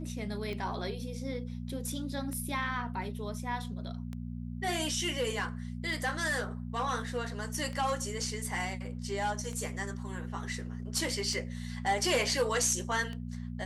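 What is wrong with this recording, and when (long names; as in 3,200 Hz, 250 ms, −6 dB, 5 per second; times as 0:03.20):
mains hum 60 Hz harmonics 4 −39 dBFS
scratch tick 33 1/3 rpm −27 dBFS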